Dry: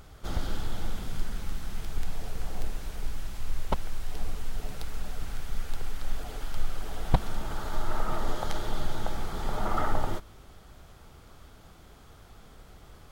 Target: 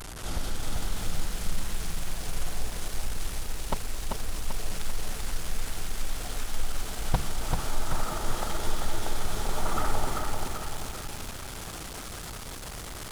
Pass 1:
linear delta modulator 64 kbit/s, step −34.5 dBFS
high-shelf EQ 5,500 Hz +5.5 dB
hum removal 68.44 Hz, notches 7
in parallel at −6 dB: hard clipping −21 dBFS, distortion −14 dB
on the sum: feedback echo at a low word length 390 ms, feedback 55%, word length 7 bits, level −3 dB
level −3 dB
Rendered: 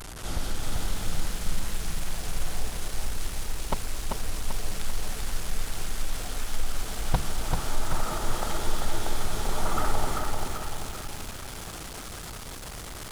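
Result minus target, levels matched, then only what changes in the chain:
hard clipping: distortion −7 dB
change: hard clipping −28.5 dBFS, distortion −7 dB

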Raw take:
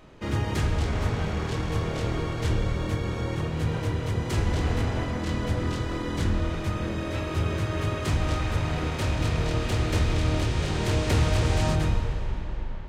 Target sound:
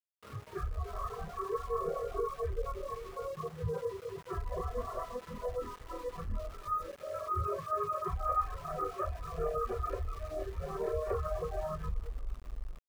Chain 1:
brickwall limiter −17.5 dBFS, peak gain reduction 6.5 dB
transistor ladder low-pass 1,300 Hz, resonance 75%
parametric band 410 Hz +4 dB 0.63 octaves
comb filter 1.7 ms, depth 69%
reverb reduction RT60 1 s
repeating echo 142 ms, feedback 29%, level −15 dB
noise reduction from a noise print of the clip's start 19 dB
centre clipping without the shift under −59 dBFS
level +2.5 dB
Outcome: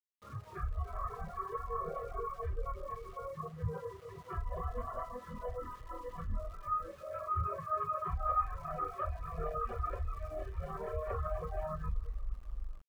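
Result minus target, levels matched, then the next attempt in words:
centre clipping without the shift: distortion −9 dB; 500 Hz band −3.5 dB
brickwall limiter −17.5 dBFS, peak gain reduction 6.5 dB
transistor ladder low-pass 1,300 Hz, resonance 75%
parametric band 410 Hz +14.5 dB 0.63 octaves
comb filter 1.7 ms, depth 69%
reverb reduction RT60 1 s
repeating echo 142 ms, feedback 29%, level −15 dB
noise reduction from a noise print of the clip's start 19 dB
centre clipping without the shift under −51 dBFS
level +2.5 dB

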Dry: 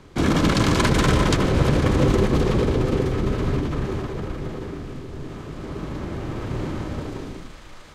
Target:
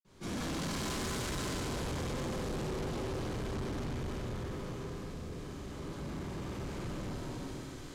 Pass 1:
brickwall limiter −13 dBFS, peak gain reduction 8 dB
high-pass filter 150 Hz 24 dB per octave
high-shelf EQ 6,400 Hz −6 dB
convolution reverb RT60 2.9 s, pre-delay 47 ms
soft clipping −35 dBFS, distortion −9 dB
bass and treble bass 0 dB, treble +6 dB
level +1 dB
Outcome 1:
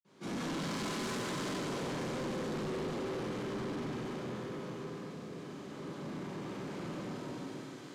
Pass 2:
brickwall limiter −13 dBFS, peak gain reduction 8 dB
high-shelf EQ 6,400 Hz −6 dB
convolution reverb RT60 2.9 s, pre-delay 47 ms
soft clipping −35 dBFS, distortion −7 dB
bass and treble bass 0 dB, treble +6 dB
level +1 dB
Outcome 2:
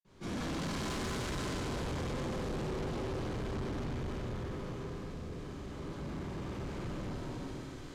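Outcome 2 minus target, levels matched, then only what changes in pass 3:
8,000 Hz band −4.0 dB
change: high-shelf EQ 6,400 Hz +3 dB

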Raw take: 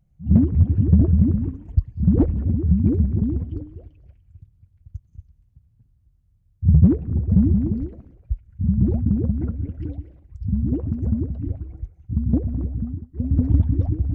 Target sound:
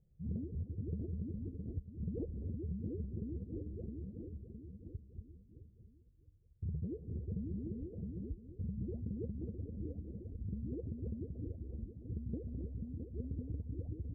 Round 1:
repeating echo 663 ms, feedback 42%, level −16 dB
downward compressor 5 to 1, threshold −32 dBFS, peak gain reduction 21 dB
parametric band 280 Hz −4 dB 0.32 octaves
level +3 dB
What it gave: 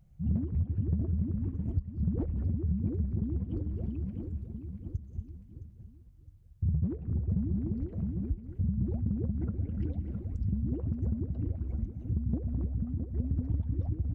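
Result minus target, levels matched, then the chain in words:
500 Hz band −7.5 dB
repeating echo 663 ms, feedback 42%, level −16 dB
downward compressor 5 to 1, threshold −32 dBFS, peak gain reduction 21 dB
transistor ladder low-pass 500 Hz, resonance 65%
parametric band 280 Hz −4 dB 0.32 octaves
level +3 dB

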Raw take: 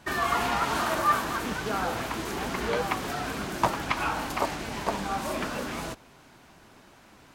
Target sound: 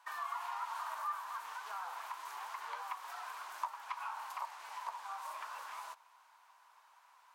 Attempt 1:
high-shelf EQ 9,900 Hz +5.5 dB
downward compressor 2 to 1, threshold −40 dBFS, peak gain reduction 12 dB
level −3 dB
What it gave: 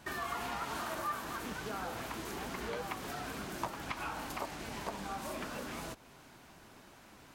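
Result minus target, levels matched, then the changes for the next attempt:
1,000 Hz band −3.5 dB
add first: four-pole ladder high-pass 900 Hz, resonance 70%

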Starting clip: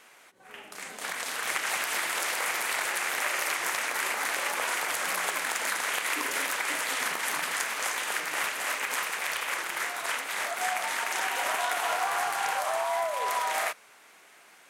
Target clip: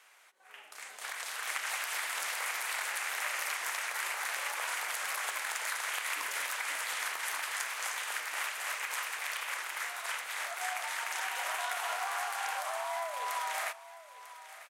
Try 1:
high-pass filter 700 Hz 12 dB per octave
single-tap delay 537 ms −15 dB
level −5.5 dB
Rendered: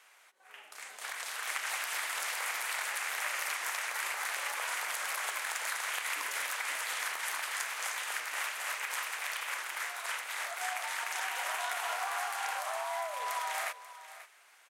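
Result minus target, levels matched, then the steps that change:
echo 409 ms early
change: single-tap delay 946 ms −15 dB

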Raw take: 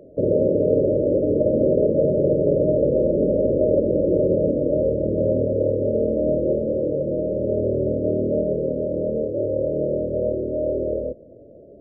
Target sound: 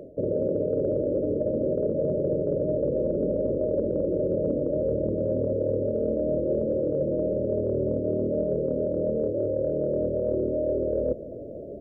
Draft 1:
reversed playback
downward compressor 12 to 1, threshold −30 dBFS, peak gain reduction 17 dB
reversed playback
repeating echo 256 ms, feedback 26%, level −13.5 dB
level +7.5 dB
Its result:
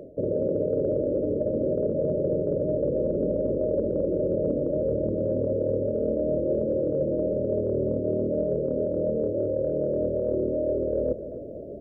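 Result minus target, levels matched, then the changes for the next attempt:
echo-to-direct +8 dB
change: repeating echo 256 ms, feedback 26%, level −21.5 dB

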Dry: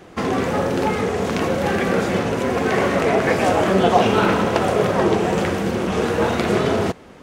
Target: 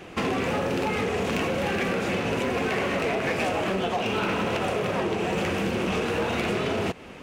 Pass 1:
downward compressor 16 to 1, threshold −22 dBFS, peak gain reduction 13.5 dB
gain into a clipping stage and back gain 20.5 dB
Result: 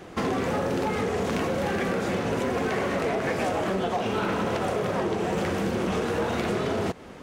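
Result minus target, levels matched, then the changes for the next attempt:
2,000 Hz band −2.5 dB
add after downward compressor: parametric band 2,600 Hz +9 dB 0.53 octaves

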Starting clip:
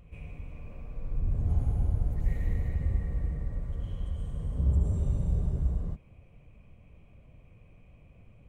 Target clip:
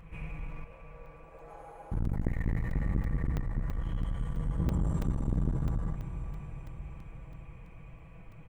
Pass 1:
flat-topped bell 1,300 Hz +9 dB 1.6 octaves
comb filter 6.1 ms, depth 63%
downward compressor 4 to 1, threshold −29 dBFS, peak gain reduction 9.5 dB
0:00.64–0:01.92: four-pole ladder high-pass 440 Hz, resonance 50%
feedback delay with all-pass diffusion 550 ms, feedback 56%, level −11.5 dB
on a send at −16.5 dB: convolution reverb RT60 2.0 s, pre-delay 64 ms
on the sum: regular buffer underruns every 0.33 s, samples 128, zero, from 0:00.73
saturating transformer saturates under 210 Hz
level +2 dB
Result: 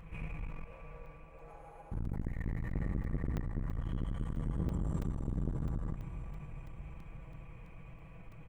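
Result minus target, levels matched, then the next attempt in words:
downward compressor: peak gain reduction +9.5 dB
flat-topped bell 1,300 Hz +9 dB 1.6 octaves
comb filter 6.1 ms, depth 63%
0:00.64–0:01.92: four-pole ladder high-pass 440 Hz, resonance 50%
feedback delay with all-pass diffusion 550 ms, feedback 56%, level −11.5 dB
on a send at −16.5 dB: convolution reverb RT60 2.0 s, pre-delay 64 ms
on the sum: regular buffer underruns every 0.33 s, samples 128, zero, from 0:00.73
saturating transformer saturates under 210 Hz
level +2 dB

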